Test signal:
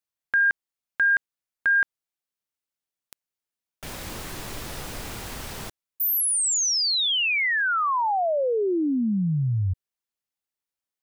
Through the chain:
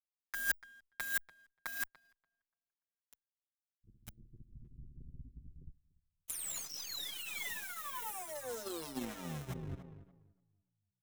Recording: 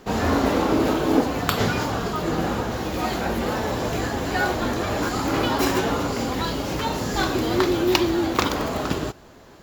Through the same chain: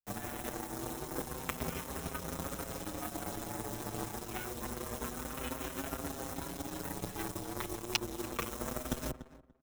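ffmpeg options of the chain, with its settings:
-filter_complex "[0:a]afftfilt=real='re*pow(10,7/40*sin(2*PI*(0.82*log(max(b,1)*sr/1024/100)/log(2)-(0.32)*(pts-256)/sr)))':imag='im*pow(10,7/40*sin(2*PI*(0.82*log(max(b,1)*sr/1024/100)/log(2)-(0.32)*(pts-256)/sr)))':win_size=1024:overlap=0.75,afwtdn=0.0447,acrossover=split=190[s0][s1];[s1]acrusher=bits=5:mix=0:aa=0.000001[s2];[s0][s2]amix=inputs=2:normalize=0,acrossover=split=140|430|3700[s3][s4][s5][s6];[s3]acompressor=threshold=0.02:ratio=8[s7];[s4]acompressor=threshold=0.0224:ratio=10[s8];[s5]acompressor=threshold=0.0112:ratio=2.5[s9];[s6]acompressor=threshold=0.0224:ratio=3[s10];[s7][s8][s9][s10]amix=inputs=4:normalize=0,highshelf=f=6900:g=5,asplit=2[s11][s12];[s12]adelay=290,lowpass=f=1800:p=1,volume=0.335,asplit=2[s13][s14];[s14]adelay=290,lowpass=f=1800:p=1,volume=0.5,asplit=2[s15][s16];[s16]adelay=290,lowpass=f=1800:p=1,volume=0.5,asplit=2[s17][s18];[s18]adelay=290,lowpass=f=1800:p=1,volume=0.5,asplit=2[s19][s20];[s20]adelay=290,lowpass=f=1800:p=1,volume=0.5,asplit=2[s21][s22];[s22]adelay=290,lowpass=f=1800:p=1,volume=0.5[s23];[s11][s13][s15][s17][s19][s21][s23]amix=inputs=7:normalize=0,areverse,acompressor=threshold=0.0178:ratio=8:attack=88:release=408:knee=6:detection=peak,areverse,bandreject=f=137.2:t=h:w=4,bandreject=f=274.4:t=h:w=4,bandreject=f=411.6:t=h:w=4,aeval=exprs='0.15*(cos(1*acos(clip(val(0)/0.15,-1,1)))-cos(1*PI/2))+0.00531*(cos(6*acos(clip(val(0)/0.15,-1,1)))-cos(6*PI/2))+0.0211*(cos(7*acos(clip(val(0)/0.15,-1,1)))-cos(7*PI/2))+0.00211*(cos(8*acos(clip(val(0)/0.15,-1,1)))-cos(8*PI/2))':c=same,bandreject=f=4600:w=8.1,asplit=2[s24][s25];[s25]adelay=6.5,afreqshift=0.26[s26];[s24][s26]amix=inputs=2:normalize=1,volume=2.82"

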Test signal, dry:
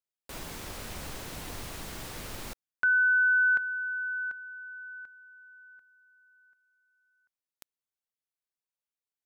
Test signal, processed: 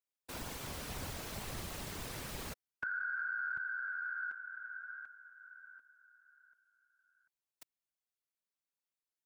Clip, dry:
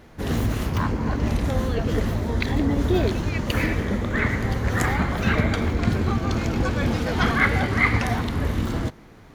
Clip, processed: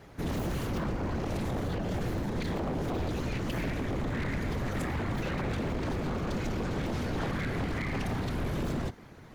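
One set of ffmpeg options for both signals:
-filter_complex "[0:a]afftfilt=real='hypot(re,im)*cos(2*PI*random(0))':imag='hypot(re,im)*sin(2*PI*random(1))':win_size=512:overlap=0.75,acrossover=split=290[s0][s1];[s1]acompressor=threshold=0.00891:ratio=6:attack=6.9:release=45:knee=2.83:detection=peak[s2];[s0][s2]amix=inputs=2:normalize=0,aeval=exprs='0.0335*(abs(mod(val(0)/0.0335+3,4)-2)-1)':c=same,volume=1.41"

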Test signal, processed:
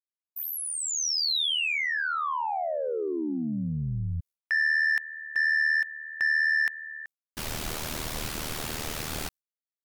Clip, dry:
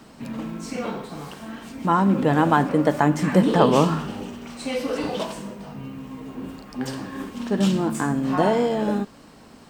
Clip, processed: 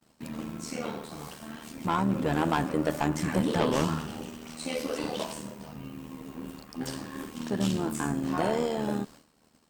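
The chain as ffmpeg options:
-filter_complex "[0:a]asoftclip=type=tanh:threshold=0.2,acrossover=split=5600[s0][s1];[s1]acompressor=threshold=0.0112:ratio=4:attack=1:release=60[s2];[s0][s2]amix=inputs=2:normalize=0,tremolo=f=77:d=0.71,agate=range=0.0224:threshold=0.00891:ratio=3:detection=peak,aemphasis=mode=production:type=cd,volume=0.75"

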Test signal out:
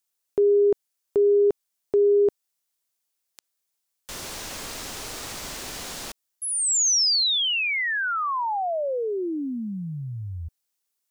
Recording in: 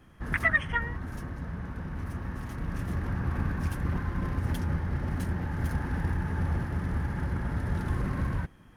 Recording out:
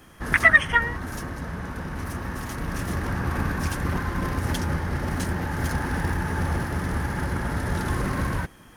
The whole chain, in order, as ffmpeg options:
-filter_complex "[0:a]acrossover=split=8100[s0][s1];[s1]acompressor=threshold=0.00112:ratio=4:attack=1:release=60[s2];[s0][s2]amix=inputs=2:normalize=0,bass=f=250:g=-7,treble=f=4000:g=8,volume=2.82"

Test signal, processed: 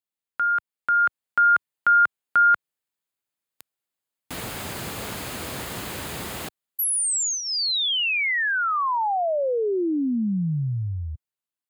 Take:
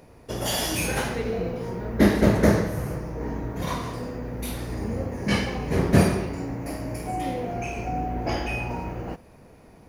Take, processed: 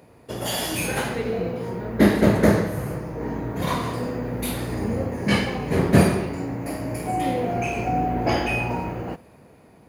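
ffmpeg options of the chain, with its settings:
-af "highpass=85,dynaudnorm=f=160:g=13:m=2,equalizer=f=5700:t=o:w=0.21:g=-9"

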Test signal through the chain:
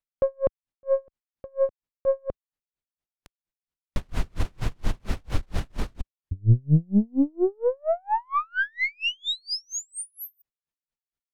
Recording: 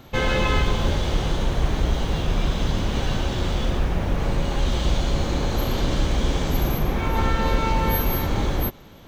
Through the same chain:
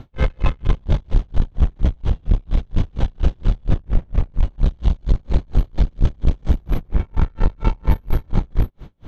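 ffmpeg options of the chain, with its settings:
-af "aemphasis=mode=reproduction:type=bsi,aeval=exprs='(tanh(3.98*val(0)+0.35)-tanh(0.35))/3.98':c=same,aeval=exprs='val(0)*pow(10,-39*(0.5-0.5*cos(2*PI*4.3*n/s))/20)':c=same,volume=1.58"

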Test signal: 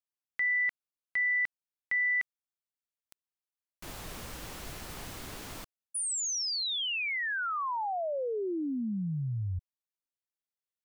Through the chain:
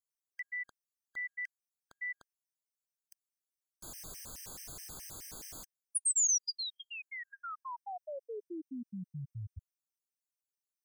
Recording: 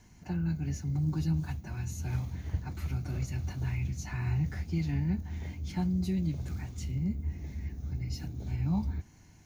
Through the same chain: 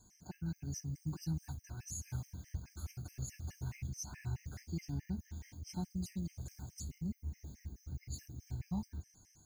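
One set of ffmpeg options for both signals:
-af "highshelf=f=4400:t=q:w=1.5:g=10.5,afftfilt=real='re*gt(sin(2*PI*4.7*pts/sr)*(1-2*mod(floor(b*sr/1024/1600),2)),0)':imag='im*gt(sin(2*PI*4.7*pts/sr)*(1-2*mod(floor(b*sr/1024/1600),2)),0)':win_size=1024:overlap=0.75,volume=0.422"

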